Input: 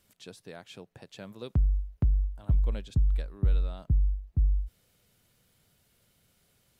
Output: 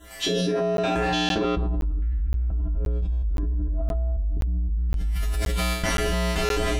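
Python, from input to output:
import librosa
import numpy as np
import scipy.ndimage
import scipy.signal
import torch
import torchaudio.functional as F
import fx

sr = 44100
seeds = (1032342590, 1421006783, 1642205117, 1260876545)

y = fx.spec_dropout(x, sr, seeds[0], share_pct=30)
y = fx.recorder_agc(y, sr, target_db=-20.5, rise_db_per_s=25.0, max_gain_db=30)
y = fx.high_shelf(y, sr, hz=2000.0, db=-8.5)
y = fx.env_lowpass_down(y, sr, base_hz=320.0, full_db=-24.5)
y = y + 0.54 * np.pad(y, (int(3.0 * sr / 1000.0), 0))[:len(y)]
y = fx.room_shoebox(y, sr, seeds[1], volume_m3=540.0, walls='mixed', distance_m=3.1)
y = fx.step_gate(y, sr, bpm=144, pattern='xxxxxx..xxx..x.x', floor_db=-24.0, edge_ms=4.5)
y = fx.peak_eq(y, sr, hz=96.0, db=-6.5, octaves=0.88)
y = fx.comb_fb(y, sr, f0_hz=60.0, decay_s=0.8, harmonics='odd', damping=0.0, mix_pct=100)
y = fx.buffer_crackle(y, sr, first_s=0.77, period_s=0.52, block=512, kind='zero')
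y = fx.env_flatten(y, sr, amount_pct=100)
y = F.gain(torch.from_numpy(y), -1.5).numpy()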